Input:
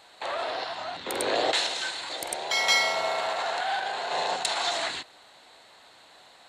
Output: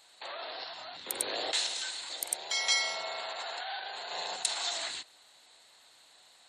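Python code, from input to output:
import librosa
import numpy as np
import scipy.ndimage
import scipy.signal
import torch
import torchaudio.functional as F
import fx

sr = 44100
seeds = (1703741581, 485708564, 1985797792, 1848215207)

y = fx.spec_gate(x, sr, threshold_db=-30, keep='strong')
y = F.preemphasis(torch.from_numpy(y), 0.8).numpy()
y = y * librosa.db_to_amplitude(1.5)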